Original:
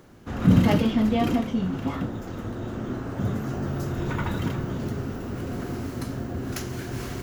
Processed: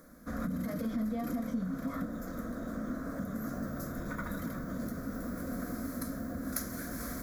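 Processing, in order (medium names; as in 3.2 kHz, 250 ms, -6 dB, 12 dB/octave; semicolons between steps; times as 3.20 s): peak limiter -18.5 dBFS, peak gain reduction 11 dB; compression, threshold -28 dBFS, peak gain reduction 6.5 dB; peaking EQ 12 kHz +12 dB 0.43 oct; static phaser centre 570 Hz, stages 8; trim -1.5 dB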